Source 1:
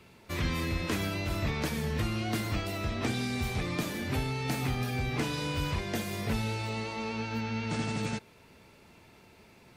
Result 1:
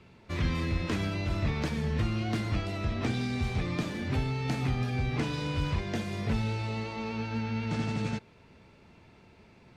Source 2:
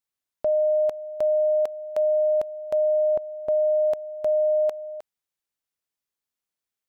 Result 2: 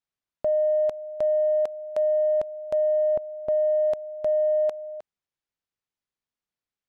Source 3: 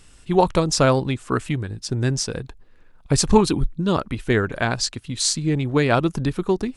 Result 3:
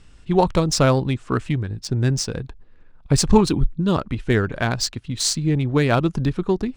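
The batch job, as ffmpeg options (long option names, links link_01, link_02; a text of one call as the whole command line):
ffmpeg -i in.wav -af "bass=frequency=250:gain=4,treble=frequency=4000:gain=3,adynamicsmooth=sensitivity=2.5:basefreq=4700,volume=-1dB" out.wav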